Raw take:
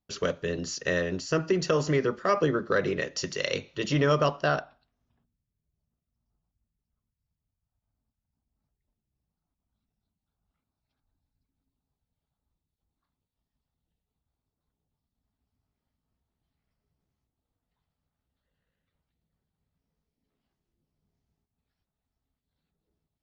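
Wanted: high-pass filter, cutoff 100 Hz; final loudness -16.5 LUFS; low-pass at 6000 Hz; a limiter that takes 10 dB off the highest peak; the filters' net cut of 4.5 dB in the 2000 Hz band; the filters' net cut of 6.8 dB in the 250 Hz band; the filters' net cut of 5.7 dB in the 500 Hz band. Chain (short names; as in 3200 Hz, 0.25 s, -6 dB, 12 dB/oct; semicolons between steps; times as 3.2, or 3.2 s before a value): HPF 100 Hz; LPF 6000 Hz; bell 250 Hz -9 dB; bell 500 Hz -4 dB; bell 2000 Hz -5.5 dB; gain +19.5 dB; limiter -5 dBFS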